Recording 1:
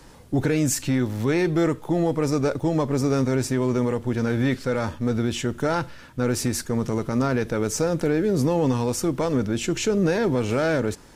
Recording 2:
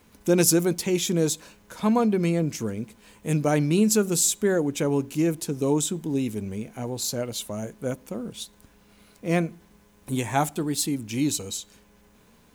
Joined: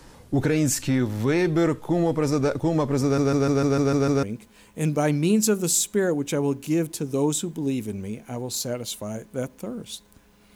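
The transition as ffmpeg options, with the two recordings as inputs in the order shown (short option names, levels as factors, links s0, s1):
-filter_complex "[0:a]apad=whole_dur=10.55,atrim=end=10.55,asplit=8[s0][s1][s2][s3][s4][s5][s6][s7];[s0]atrim=end=3.182[s8];[s1]atrim=start=3.028:end=3.182[s9];[s2]atrim=start=3.028:end=3.182[s10];[s3]atrim=start=3.028:end=3.182[s11];[s4]atrim=start=3.028:end=3.182[s12];[s5]atrim=start=3.028:end=3.182[s13];[s6]atrim=start=3.028:end=3.182[s14];[s7]atrim=start=3.028:end=3.182[s15];[1:a]atrim=start=2.708:end=9.03[s16];[s8][s9]acrossfade=d=0.004:c1=hsin:c2=hsin[s17];[s17][s10]acrossfade=d=0.004:c1=hsin:c2=hsin[s18];[s18][s11]acrossfade=d=0.004:c1=hsin:c2=hsin[s19];[s19][s12]acrossfade=d=0.004:c1=hsin:c2=hsin[s20];[s20][s13]acrossfade=d=0.004:c1=hsin:c2=hsin[s21];[s21][s14]acrossfade=d=0.004:c1=hsin:c2=hsin[s22];[s22][s15]acrossfade=d=0.004:c1=hsin:c2=hsin[s23];[s23][s16]acrossfade=d=0.004:c1=hsin:c2=hsin"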